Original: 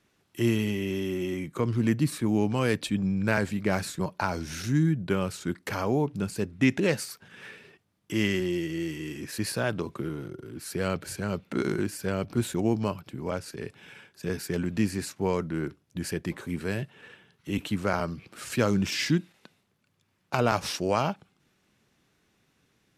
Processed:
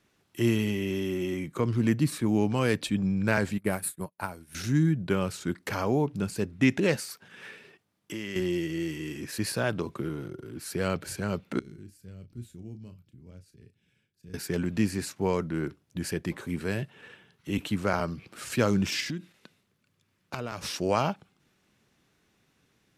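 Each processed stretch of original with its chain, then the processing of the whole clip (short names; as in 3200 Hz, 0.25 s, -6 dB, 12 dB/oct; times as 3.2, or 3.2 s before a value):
3.58–4.55 resonant high shelf 7800 Hz +10.5 dB, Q 3 + upward expander 2.5:1, over -45 dBFS
6.96–8.36 HPF 170 Hz 6 dB/oct + compressor, threshold -32 dBFS
11.59–14.34 passive tone stack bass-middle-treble 10-0-1 + doubler 33 ms -10 dB
19–20.76 bell 800 Hz -5 dB 0.62 oct + compressor, threshold -30 dBFS
whole clip: dry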